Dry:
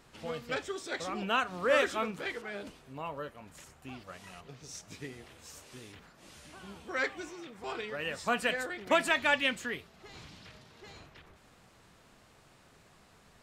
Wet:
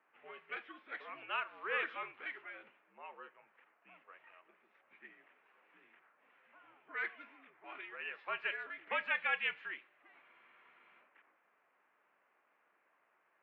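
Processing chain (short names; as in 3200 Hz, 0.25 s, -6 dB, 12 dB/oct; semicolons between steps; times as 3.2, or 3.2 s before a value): mistuned SSB -70 Hz 280–2600 Hz; differentiator; low-pass opened by the level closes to 1500 Hz, open at -44 dBFS; on a send at -20.5 dB: reverb RT60 0.95 s, pre-delay 3 ms; on the sum: spectral freeze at 10.23, 0.76 s; gain +7 dB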